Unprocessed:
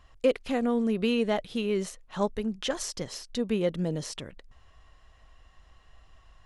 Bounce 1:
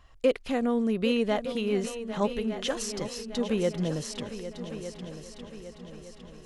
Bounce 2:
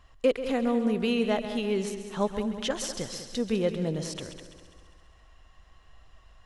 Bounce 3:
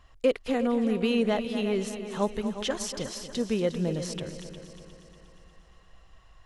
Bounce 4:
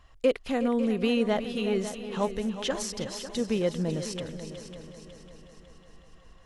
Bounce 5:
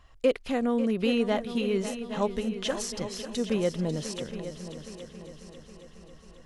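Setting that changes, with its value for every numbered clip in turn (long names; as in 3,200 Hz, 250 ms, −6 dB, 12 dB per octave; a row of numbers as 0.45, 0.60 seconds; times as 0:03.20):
echo machine with several playback heads, delay time: 403, 67, 119, 183, 272 milliseconds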